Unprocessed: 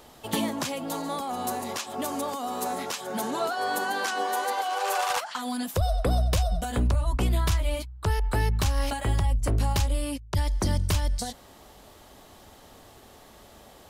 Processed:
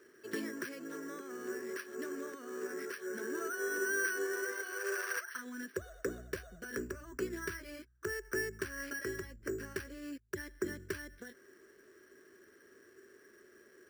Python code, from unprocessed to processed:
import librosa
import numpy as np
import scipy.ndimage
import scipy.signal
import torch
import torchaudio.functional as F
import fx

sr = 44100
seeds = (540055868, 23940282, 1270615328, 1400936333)

y = fx.double_bandpass(x, sr, hz=790.0, octaves=2.1)
y = np.repeat(scipy.signal.resample_poly(y, 1, 6), 6)[:len(y)]
y = y * 10.0 ** (2.5 / 20.0)